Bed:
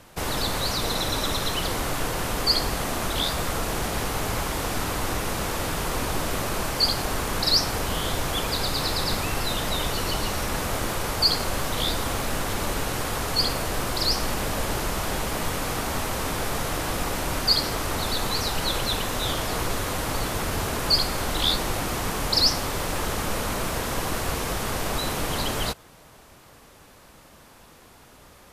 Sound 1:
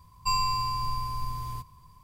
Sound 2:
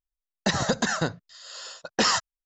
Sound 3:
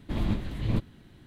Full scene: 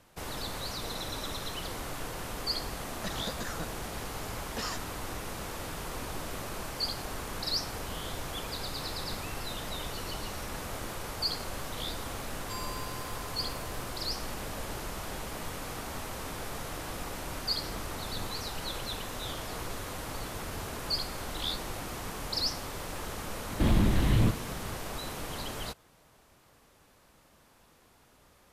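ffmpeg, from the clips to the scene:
ffmpeg -i bed.wav -i cue0.wav -i cue1.wav -i cue2.wav -filter_complex "[3:a]asplit=2[link_01][link_02];[0:a]volume=-11dB[link_03];[1:a]equalizer=frequency=12000:width_type=o:width=0.77:gain=13.5[link_04];[link_02]alimiter=level_in=25dB:limit=-1dB:release=50:level=0:latency=1[link_05];[2:a]atrim=end=2.45,asetpts=PTS-STARTPTS,volume=-15dB,afade=type=in:duration=0.004:curve=hsin,afade=type=out:start_time=2.446:duration=0.004:curve=hsin,adelay=2580[link_06];[link_04]atrim=end=2.03,asetpts=PTS-STARTPTS,volume=-16dB,afade=type=in:duration=0.004:curve=hsin,afade=type=out:start_time=2.026:duration=0.004:curve=hsin,adelay=12240[link_07];[link_01]atrim=end=1.26,asetpts=PTS-STARTPTS,volume=-17dB,afade=type=in:duration=0.004:curve=hsin,afade=type=out:start_time=1.256:duration=0.004:curve=hsin,adelay=17470[link_08];[link_05]atrim=end=1.26,asetpts=PTS-STARTPTS,volume=-15dB,afade=type=in:duration=0.004:curve=hsin,afade=type=out:start_time=1.256:duration=0.004:curve=hsin,adelay=23510[link_09];[link_03][link_06][link_07][link_08][link_09]amix=inputs=5:normalize=0" out.wav

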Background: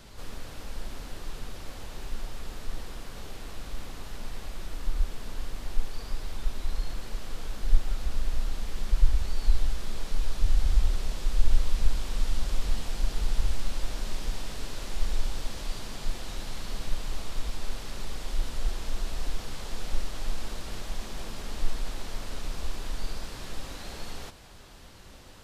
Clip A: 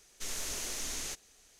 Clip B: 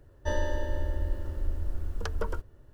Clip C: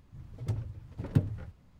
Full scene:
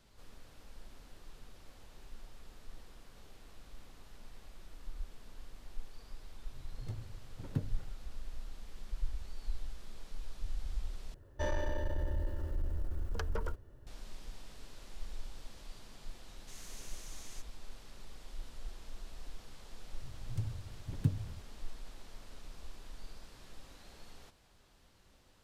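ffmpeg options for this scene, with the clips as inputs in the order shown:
ffmpeg -i bed.wav -i cue0.wav -i cue1.wav -i cue2.wav -filter_complex "[3:a]asplit=2[link_01][link_02];[0:a]volume=-15.5dB[link_03];[2:a]asoftclip=type=tanh:threshold=-24.5dB[link_04];[link_02]equalizer=frequency=790:width=0.3:gain=-11.5[link_05];[link_03]asplit=2[link_06][link_07];[link_06]atrim=end=11.144[link_08];[link_04]atrim=end=2.73,asetpts=PTS-STARTPTS,volume=-2dB[link_09];[link_07]atrim=start=13.866[link_10];[link_01]atrim=end=1.79,asetpts=PTS-STARTPTS,volume=-9.5dB,afade=type=in:duration=0.004:curve=hsin,afade=type=out:start_time=1.786:duration=0.004:curve=hsin,adelay=6400[link_11];[1:a]atrim=end=1.59,asetpts=PTS-STARTPTS,volume=-14.5dB,afade=type=in:duration=0.004:curve=hsin,afade=type=out:start_time=1.586:duration=0.004:curve=hsin,adelay=16270[link_12];[link_05]atrim=end=1.79,asetpts=PTS-STARTPTS,volume=-1.5dB,afade=type=in:duration=0.004:curve=hsin,afade=type=out:start_time=1.786:duration=0.004:curve=hsin,adelay=19890[link_13];[link_08][link_09]acrossfade=duration=0.004:curve1=hsin:curve2=hsin[link_14];[link_14][link_10]acrossfade=duration=0.004:curve1=hsin:curve2=hsin[link_15];[link_15][link_11][link_12][link_13]amix=inputs=4:normalize=0" out.wav

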